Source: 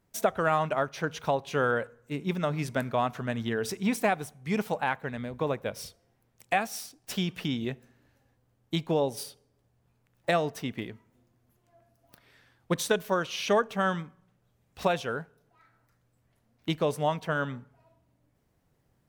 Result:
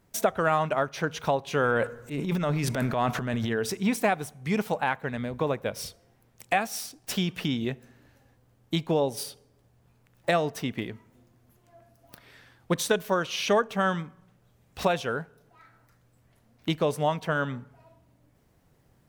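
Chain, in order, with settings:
in parallel at +2 dB: downward compressor, threshold −40 dBFS, peak gain reduction 19.5 dB
0:01.65–0:03.51: on the sum: transient designer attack −6 dB, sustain +10 dB

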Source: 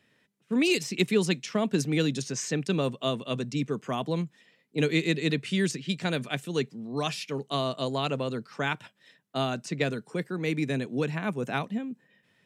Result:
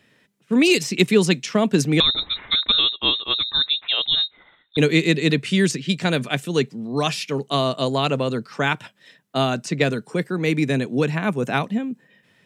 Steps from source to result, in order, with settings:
0:02.00–0:04.77: voice inversion scrambler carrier 3,900 Hz
level +8 dB

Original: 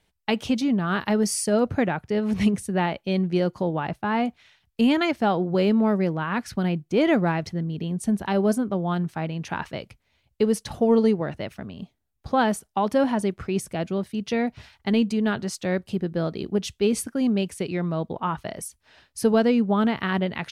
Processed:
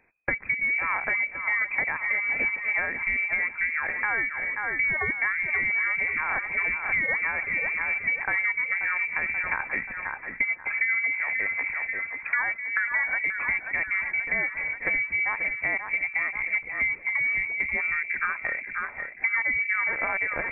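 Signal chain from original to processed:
low-shelf EQ 120 Hz −11.5 dB
on a send: echo with a time of its own for lows and highs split 460 Hz, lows 252 ms, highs 533 ms, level −10 dB
on the sum: downward compressor 6 to 1, threshold −31 dBFS, peak gain reduction 14 dB
voice inversion scrambler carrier 2,500 Hz
level +7 dB

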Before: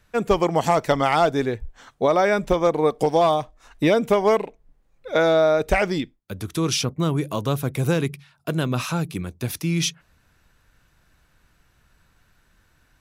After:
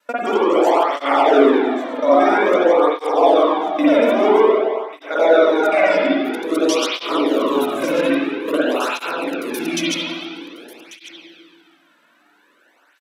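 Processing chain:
reversed piece by piece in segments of 88 ms
Chebyshev high-pass filter 270 Hz, order 4
brickwall limiter −13.5 dBFS, peak gain reduction 8 dB
single-tap delay 1,142 ms −15 dB
spring reverb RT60 1.7 s, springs 47/54 ms, chirp 40 ms, DRR −8.5 dB
through-zero flanger with one copy inverted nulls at 0.5 Hz, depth 2.7 ms
level +3.5 dB

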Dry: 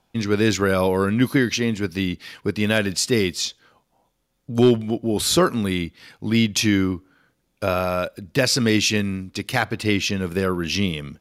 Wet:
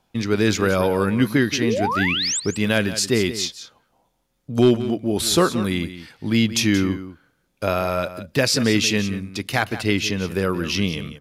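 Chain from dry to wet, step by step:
sound drawn into the spectrogram rise, 0:01.61–0:02.40, 280–8,500 Hz −23 dBFS
on a send: single-tap delay 178 ms −13 dB

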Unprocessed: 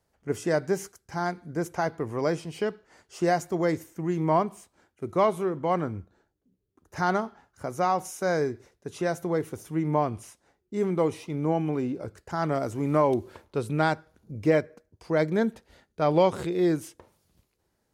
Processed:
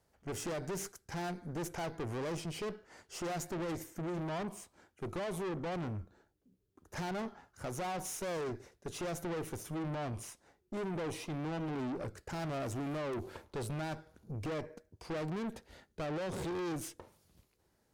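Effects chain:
dynamic equaliser 1,300 Hz, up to −6 dB, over −39 dBFS, Q 1.5
brickwall limiter −21 dBFS, peak gain reduction 10 dB
tube saturation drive 38 dB, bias 0.55
level +2.5 dB

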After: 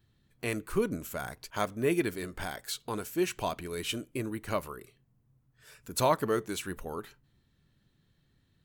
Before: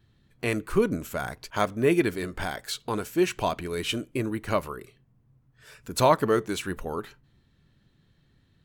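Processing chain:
high-shelf EQ 7,300 Hz +8 dB
level −6 dB

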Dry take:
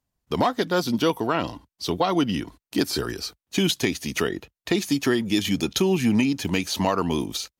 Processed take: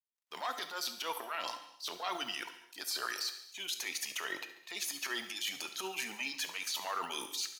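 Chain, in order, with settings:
mu-law and A-law mismatch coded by A
transient designer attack −10 dB, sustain +9 dB
high-pass filter 1,000 Hz 12 dB per octave
reversed playback
downward compressor 6 to 1, threshold −32 dBFS, peak gain reduction 13 dB
reversed playback
reverb reduction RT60 1.2 s
brickwall limiter −25.5 dBFS, peak gain reduction 8.5 dB
repeating echo 70 ms, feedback 55%, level −15 dB
reverb whose tail is shaped and stops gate 310 ms falling, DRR 8.5 dB

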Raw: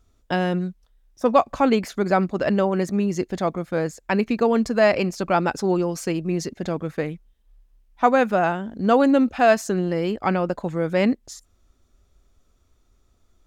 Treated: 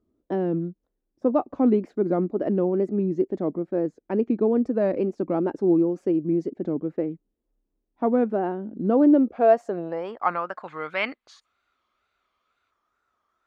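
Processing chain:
band-pass filter sweep 320 Hz → 1,300 Hz, 0:09.08–0:10.41
tape wow and flutter 120 cents
gain on a spectral selection 0:10.64–0:12.71, 2,000–4,800 Hz +8 dB
level +4.5 dB

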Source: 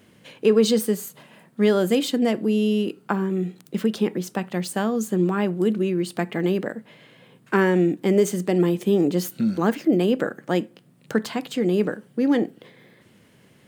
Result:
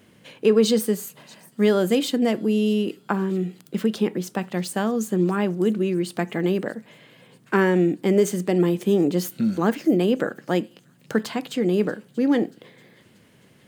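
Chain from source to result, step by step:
delay with a high-pass on its return 634 ms, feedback 52%, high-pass 3,600 Hz, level −19.5 dB

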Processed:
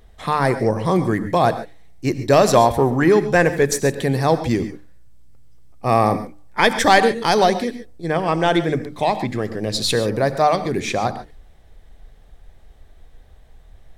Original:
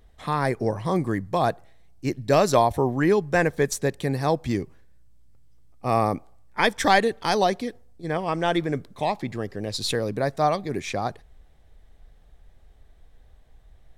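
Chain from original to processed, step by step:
mains-hum notches 50/100/150/200/250/300 Hz
in parallel at −8 dB: soft clipping −20.5 dBFS, distortion −9 dB
on the sum: reverb whose tail is shaped and stops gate 160 ms rising, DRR 11 dB
level +4 dB

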